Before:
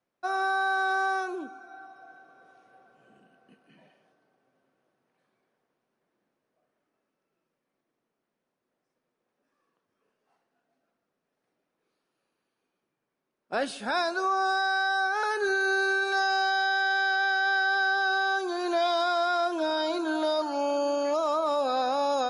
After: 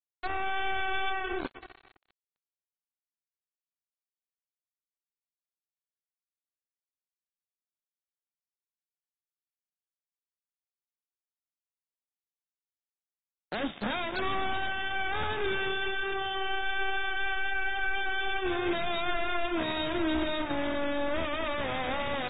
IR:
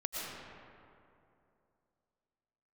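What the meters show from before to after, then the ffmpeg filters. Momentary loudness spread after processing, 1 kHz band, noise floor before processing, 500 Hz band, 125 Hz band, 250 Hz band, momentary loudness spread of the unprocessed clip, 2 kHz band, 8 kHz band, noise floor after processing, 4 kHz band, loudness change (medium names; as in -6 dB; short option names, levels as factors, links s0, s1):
3 LU, -7.0 dB, -83 dBFS, -5.5 dB, no reading, 0.0 dB, 5 LU, -5.5 dB, under -30 dB, under -85 dBFS, -2.0 dB, -5.0 dB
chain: -filter_complex "[0:a]highshelf=f=2400:g=-6,bandreject=f=60:t=h:w=6,bandreject=f=120:t=h:w=6,bandreject=f=180:t=h:w=6,bandreject=f=240:t=h:w=6,bandreject=f=300:t=h:w=6,asplit=2[s0][s1];[1:a]atrim=start_sample=2205,asetrate=23814,aresample=44100[s2];[s1][s2]afir=irnorm=-1:irlink=0,volume=0.141[s3];[s0][s3]amix=inputs=2:normalize=0,aeval=exprs='0.168*(cos(1*acos(clip(val(0)/0.168,-1,1)))-cos(1*PI/2))+0.0237*(cos(2*acos(clip(val(0)/0.168,-1,1)))-cos(2*PI/2))+0.0168*(cos(4*acos(clip(val(0)/0.168,-1,1)))-cos(4*PI/2))+0.0531*(cos(5*acos(clip(val(0)/0.168,-1,1)))-cos(5*PI/2))+0.0075*(cos(8*acos(clip(val(0)/0.168,-1,1)))-cos(8*PI/2))':c=same,aecho=1:1:302:0.0891,acrossover=split=260|3000[s4][s5][s6];[s5]acompressor=threshold=0.00501:ratio=2[s7];[s4][s7][s6]amix=inputs=3:normalize=0,bandreject=f=2900:w=10,acrusher=bits=4:mix=0:aa=0.5" -ar 32000 -c:a aac -b:a 16k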